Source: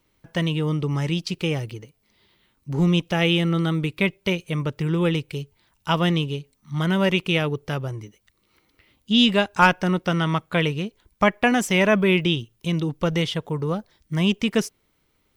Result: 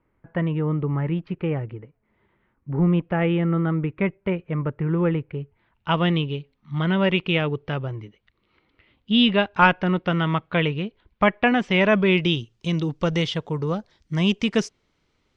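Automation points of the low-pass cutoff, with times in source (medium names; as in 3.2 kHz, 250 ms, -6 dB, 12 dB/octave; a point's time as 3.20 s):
low-pass 24 dB/octave
5.34 s 1.9 kHz
6.01 s 3.5 kHz
11.62 s 3.5 kHz
12.38 s 6.7 kHz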